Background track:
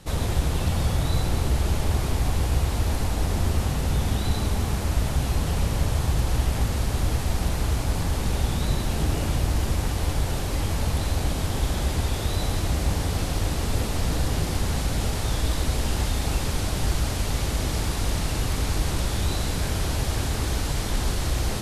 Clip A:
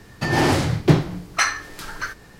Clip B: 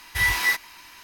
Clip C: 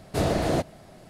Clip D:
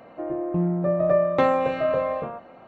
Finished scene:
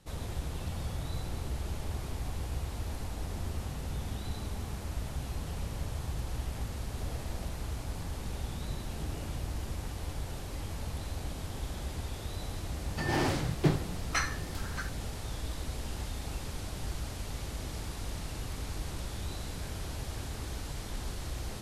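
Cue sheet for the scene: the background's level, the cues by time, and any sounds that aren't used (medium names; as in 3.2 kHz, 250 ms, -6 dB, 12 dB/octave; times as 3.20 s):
background track -13 dB
6.84 s: add C -17.5 dB + peak limiter -23 dBFS
12.76 s: add A -11.5 dB
not used: B, D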